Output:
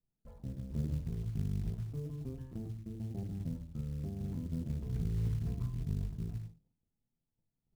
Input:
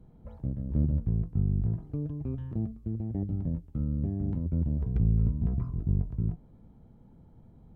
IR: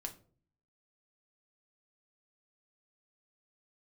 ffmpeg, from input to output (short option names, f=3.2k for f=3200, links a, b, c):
-filter_complex "[0:a]agate=range=-28dB:threshold=-48dB:ratio=16:detection=peak[a];[1:a]atrim=start_sample=2205,afade=t=out:st=0.29:d=0.01,atrim=end_sample=13230[b];[a][b]afir=irnorm=-1:irlink=0,acrusher=bits=7:mode=log:mix=0:aa=0.000001,volume=-5.5dB"